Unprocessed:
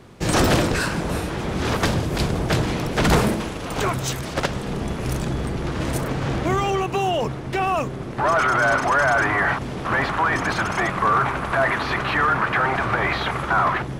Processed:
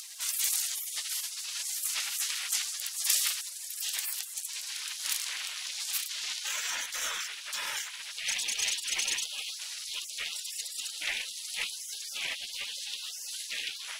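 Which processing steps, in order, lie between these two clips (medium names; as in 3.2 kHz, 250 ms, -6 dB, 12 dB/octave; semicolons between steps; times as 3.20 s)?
spectral gate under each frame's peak -30 dB weak; tilt shelf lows -6 dB, about 680 Hz; upward compressor, threshold -37 dBFS; trim +3 dB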